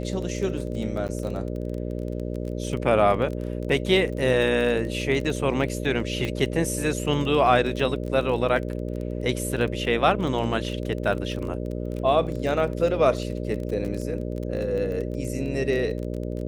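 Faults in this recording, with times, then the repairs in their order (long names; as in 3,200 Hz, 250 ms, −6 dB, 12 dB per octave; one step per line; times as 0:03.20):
mains buzz 60 Hz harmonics 10 −30 dBFS
surface crackle 23 per second −30 dBFS
0:01.08–0:01.09: drop-out 9.2 ms
0:06.25: click −16 dBFS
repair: click removal
hum removal 60 Hz, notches 10
repair the gap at 0:01.08, 9.2 ms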